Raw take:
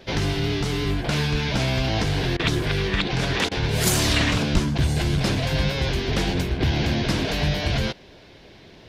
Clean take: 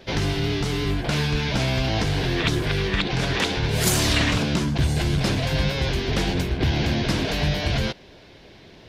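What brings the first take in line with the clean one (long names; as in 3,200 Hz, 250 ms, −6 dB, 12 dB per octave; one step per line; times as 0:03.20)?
0:04.53–0:04.65: high-pass filter 140 Hz 24 dB per octave
repair the gap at 0:02.37/0:03.49, 23 ms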